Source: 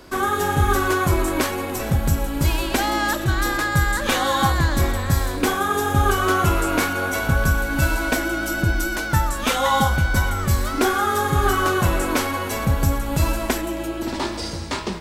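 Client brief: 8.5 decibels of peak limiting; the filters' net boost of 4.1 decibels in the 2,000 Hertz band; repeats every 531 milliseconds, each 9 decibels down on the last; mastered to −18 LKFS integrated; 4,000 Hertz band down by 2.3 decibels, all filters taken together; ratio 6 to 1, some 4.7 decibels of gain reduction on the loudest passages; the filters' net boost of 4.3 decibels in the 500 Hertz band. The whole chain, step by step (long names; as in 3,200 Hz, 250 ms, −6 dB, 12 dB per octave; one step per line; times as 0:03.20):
parametric band 500 Hz +5.5 dB
parametric band 2,000 Hz +6.5 dB
parametric band 4,000 Hz −5.5 dB
downward compressor 6 to 1, threshold −17 dBFS
brickwall limiter −14.5 dBFS
repeating echo 531 ms, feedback 35%, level −9 dB
level +5.5 dB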